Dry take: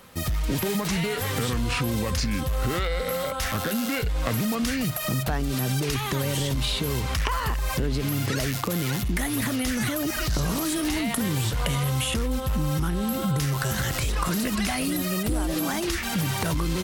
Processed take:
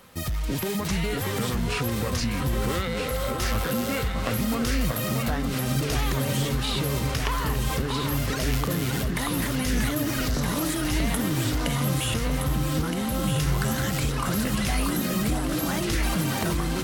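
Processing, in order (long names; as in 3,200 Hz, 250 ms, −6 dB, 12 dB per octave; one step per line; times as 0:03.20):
delay that swaps between a low-pass and a high-pass 634 ms, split 1,600 Hz, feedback 79%, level −3.5 dB
level −2 dB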